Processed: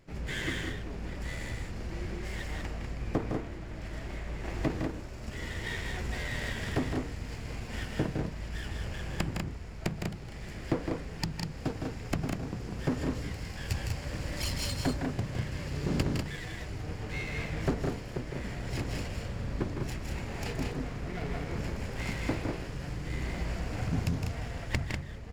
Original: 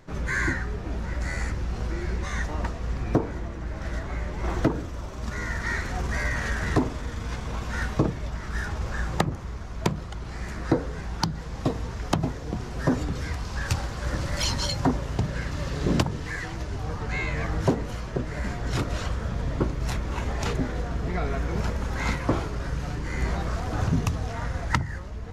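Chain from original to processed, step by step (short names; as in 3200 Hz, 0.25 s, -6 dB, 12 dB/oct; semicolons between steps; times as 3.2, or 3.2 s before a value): minimum comb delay 0.4 ms; loudspeakers at several distances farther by 55 m -6 dB, 67 m -5 dB; gain -7 dB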